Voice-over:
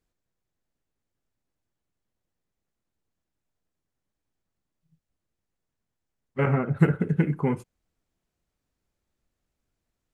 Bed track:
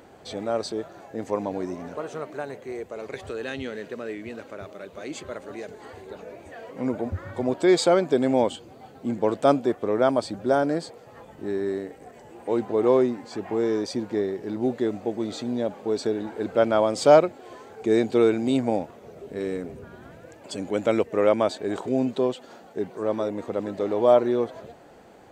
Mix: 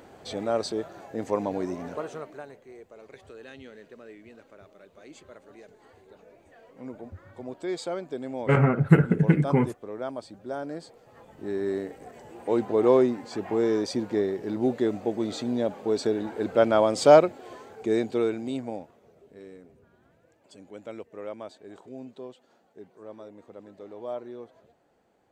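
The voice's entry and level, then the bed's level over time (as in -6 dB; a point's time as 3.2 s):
2.10 s, +3.0 dB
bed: 1.96 s 0 dB
2.64 s -13 dB
10.49 s -13 dB
11.8 s 0 dB
17.46 s 0 dB
19.55 s -17.5 dB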